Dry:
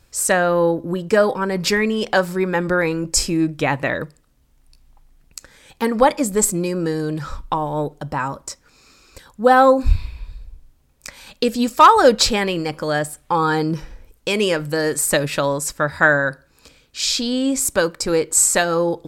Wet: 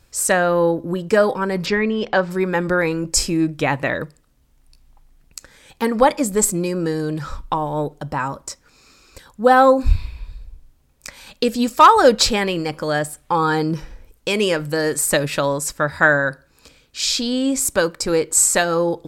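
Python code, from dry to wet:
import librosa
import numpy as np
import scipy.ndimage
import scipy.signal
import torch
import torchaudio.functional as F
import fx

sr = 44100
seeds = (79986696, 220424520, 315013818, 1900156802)

y = fx.air_absorb(x, sr, metres=170.0, at=(1.65, 2.3), fade=0.02)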